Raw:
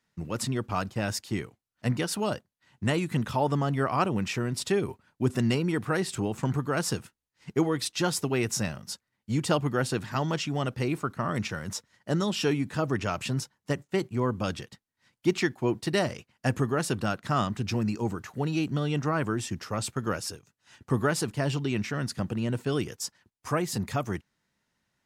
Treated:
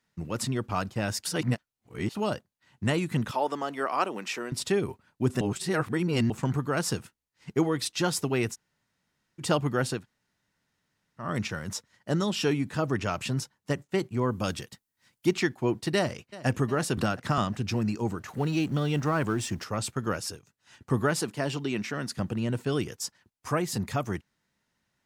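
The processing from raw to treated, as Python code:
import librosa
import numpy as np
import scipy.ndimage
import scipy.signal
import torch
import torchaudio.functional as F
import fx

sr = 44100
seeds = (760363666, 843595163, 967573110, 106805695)

y = fx.bessel_highpass(x, sr, hz=390.0, order=4, at=(3.31, 4.52))
y = fx.high_shelf(y, sr, hz=7800.0, db=11.5, at=(14.31, 15.29))
y = fx.echo_throw(y, sr, start_s=15.96, length_s=0.51, ms=360, feedback_pct=60, wet_db=-17.0)
y = fx.band_squash(y, sr, depth_pct=100, at=(16.97, 17.38))
y = fx.law_mismatch(y, sr, coded='mu', at=(18.28, 19.64))
y = fx.highpass(y, sr, hz=180.0, slope=12, at=(21.2, 22.17))
y = fx.edit(y, sr, fx.reverse_span(start_s=1.25, length_s=0.9),
    fx.reverse_span(start_s=5.41, length_s=0.89),
    fx.room_tone_fill(start_s=8.53, length_s=0.88, crossfade_s=0.06),
    fx.room_tone_fill(start_s=9.98, length_s=1.26, crossfade_s=0.16), tone=tone)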